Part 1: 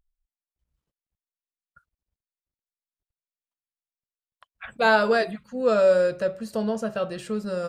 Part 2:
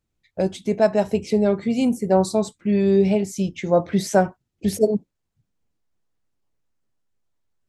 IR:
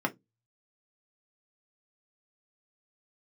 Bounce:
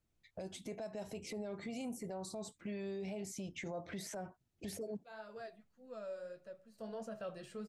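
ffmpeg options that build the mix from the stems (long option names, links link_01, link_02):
-filter_complex "[0:a]flanger=delay=8.5:depth=5.3:regen=-49:speed=1.6:shape=triangular,adelay=250,volume=-5dB,afade=type=out:start_time=5.45:duration=0.24:silence=0.446684,afade=type=in:start_time=6.73:duration=0.22:silence=0.266073[link_01];[1:a]acompressor=threshold=-23dB:ratio=10,volume=-4dB,asplit=2[link_02][link_03];[link_03]apad=whole_len=349846[link_04];[link_01][link_04]sidechaincompress=threshold=-45dB:ratio=8:attack=16:release=766[link_05];[link_05][link_02]amix=inputs=2:normalize=0,equalizer=frequency=670:width_type=o:width=0.23:gain=4.5,acrossover=split=600|2200|6600[link_06][link_07][link_08][link_09];[link_06]acompressor=threshold=-41dB:ratio=4[link_10];[link_07]acompressor=threshold=-43dB:ratio=4[link_11];[link_08]acompressor=threshold=-56dB:ratio=4[link_12];[link_09]acompressor=threshold=-52dB:ratio=4[link_13];[link_10][link_11][link_12][link_13]amix=inputs=4:normalize=0,alimiter=level_in=11.5dB:limit=-24dB:level=0:latency=1:release=12,volume=-11.5dB"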